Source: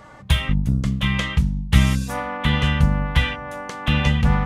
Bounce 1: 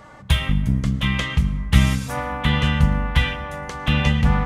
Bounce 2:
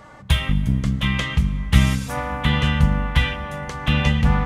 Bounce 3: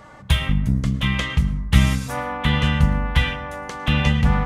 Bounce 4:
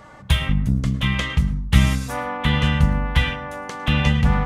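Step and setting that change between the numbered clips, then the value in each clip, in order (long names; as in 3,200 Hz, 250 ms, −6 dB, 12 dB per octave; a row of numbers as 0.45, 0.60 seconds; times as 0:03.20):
dense smooth reverb, RT60: 2.4, 5.2, 1.1, 0.54 seconds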